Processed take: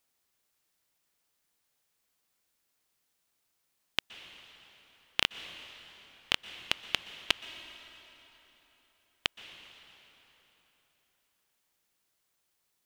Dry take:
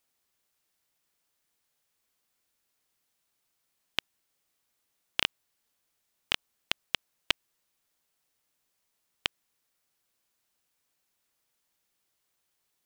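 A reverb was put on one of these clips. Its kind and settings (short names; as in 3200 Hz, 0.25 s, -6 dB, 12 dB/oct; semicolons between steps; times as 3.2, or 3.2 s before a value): plate-style reverb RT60 3.9 s, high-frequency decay 0.8×, pre-delay 0.11 s, DRR 11.5 dB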